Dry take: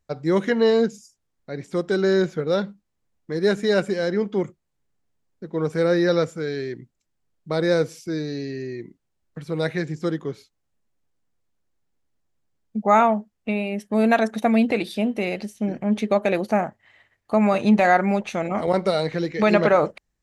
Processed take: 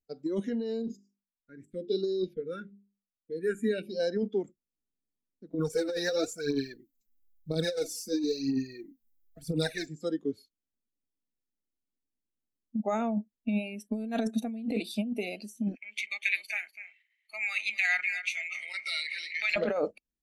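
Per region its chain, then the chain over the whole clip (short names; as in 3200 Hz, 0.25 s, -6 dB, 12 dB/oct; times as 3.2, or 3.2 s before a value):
0.82–4 gate -42 dBFS, range -13 dB + notches 50/100/150/200/250/300/350/400 Hz + phaser stages 4, 1 Hz, lowest notch 700–2000 Hz
5.54–9.87 high shelf 7500 Hz +10.5 dB + phaser 1 Hz, delay 4.8 ms, feedback 72%
15.75–19.56 resonant high-pass 2200 Hz, resonance Q 6.8 + echo 0.246 s -10 dB
whole clip: spectral noise reduction 14 dB; graphic EQ 125/250/1000/2000 Hz -9/+10/-11/-6 dB; negative-ratio compressor -23 dBFS, ratio -1; gain -6 dB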